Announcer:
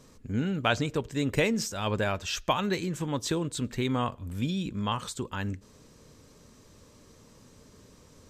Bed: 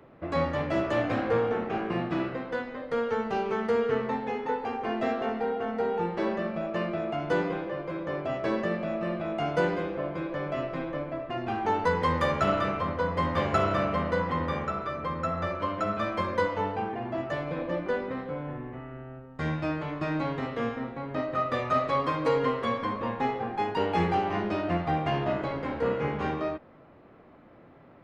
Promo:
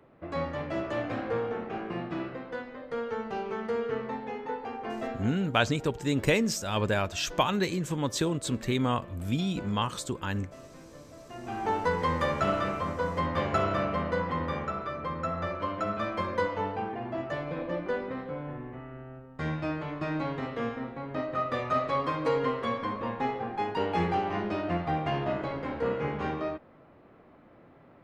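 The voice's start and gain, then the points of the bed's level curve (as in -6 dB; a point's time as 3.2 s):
4.90 s, +1.0 dB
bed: 5 s -5 dB
5.52 s -17.5 dB
11.11 s -17.5 dB
11.63 s -2 dB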